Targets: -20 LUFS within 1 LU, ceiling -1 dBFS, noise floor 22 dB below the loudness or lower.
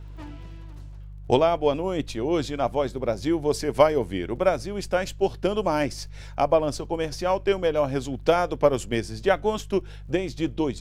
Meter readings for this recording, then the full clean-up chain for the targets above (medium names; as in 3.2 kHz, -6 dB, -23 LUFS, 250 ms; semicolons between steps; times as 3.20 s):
tick rate 22 per s; hum 50 Hz; highest harmonic 150 Hz; hum level -37 dBFS; loudness -25.0 LUFS; peak level -4.0 dBFS; loudness target -20.0 LUFS
-> de-click; de-hum 50 Hz, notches 3; trim +5 dB; peak limiter -1 dBFS